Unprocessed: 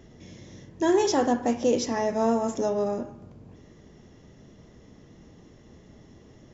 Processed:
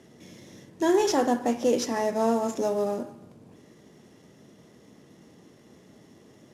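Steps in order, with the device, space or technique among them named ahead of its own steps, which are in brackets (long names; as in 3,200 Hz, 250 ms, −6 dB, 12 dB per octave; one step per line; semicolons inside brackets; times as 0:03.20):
early wireless headset (high-pass filter 160 Hz 12 dB per octave; variable-slope delta modulation 64 kbit/s)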